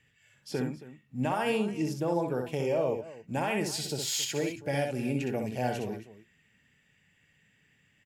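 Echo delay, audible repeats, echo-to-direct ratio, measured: 64 ms, 2, -4.5 dB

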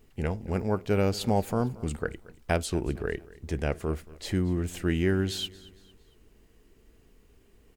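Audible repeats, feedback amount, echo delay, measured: 2, 41%, 229 ms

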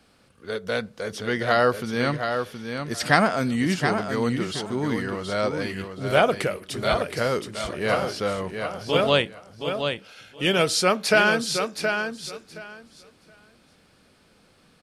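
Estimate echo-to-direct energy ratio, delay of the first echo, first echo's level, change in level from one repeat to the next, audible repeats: -6.5 dB, 721 ms, -6.5 dB, -15.5 dB, 2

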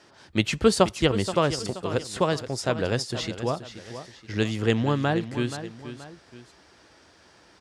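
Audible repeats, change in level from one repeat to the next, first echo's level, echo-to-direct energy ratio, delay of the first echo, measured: 2, -7.5 dB, -12.0 dB, -11.5 dB, 477 ms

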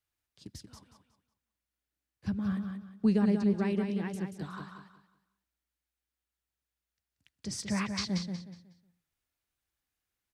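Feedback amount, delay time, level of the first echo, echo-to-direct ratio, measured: 28%, 183 ms, -6.0 dB, -5.5 dB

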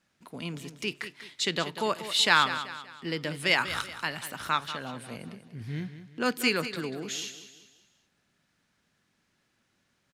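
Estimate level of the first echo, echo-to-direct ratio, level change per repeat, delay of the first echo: -12.0 dB, -11.0 dB, -7.5 dB, 191 ms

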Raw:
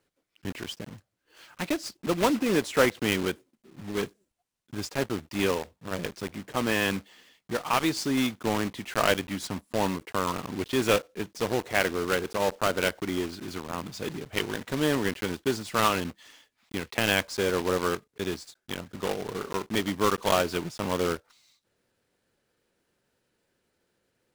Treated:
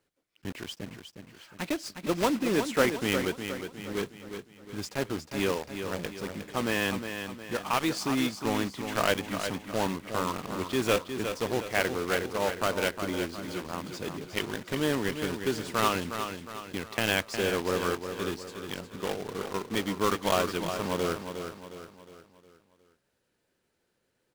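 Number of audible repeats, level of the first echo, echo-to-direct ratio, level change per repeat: 4, -8.0 dB, -7.0 dB, -7.0 dB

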